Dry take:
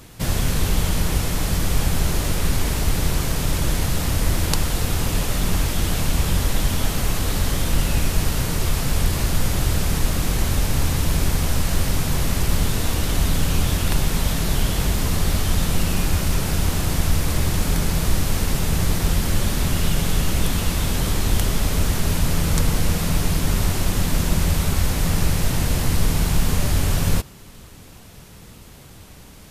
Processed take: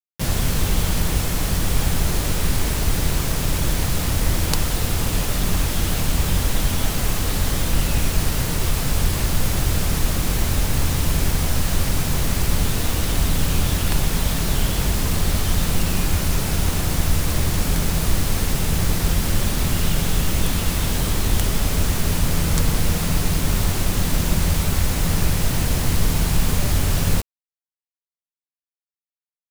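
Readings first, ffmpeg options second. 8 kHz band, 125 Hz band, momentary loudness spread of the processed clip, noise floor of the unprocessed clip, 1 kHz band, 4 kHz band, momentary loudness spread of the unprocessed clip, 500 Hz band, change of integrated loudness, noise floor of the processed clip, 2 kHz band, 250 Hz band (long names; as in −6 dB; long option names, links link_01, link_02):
+1.0 dB, 0.0 dB, 1 LU, −43 dBFS, +0.5 dB, +1.0 dB, 2 LU, 0.0 dB, +0.5 dB, below −85 dBFS, +0.5 dB, 0.0 dB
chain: -af "acrusher=bits=4:mix=0:aa=0.000001"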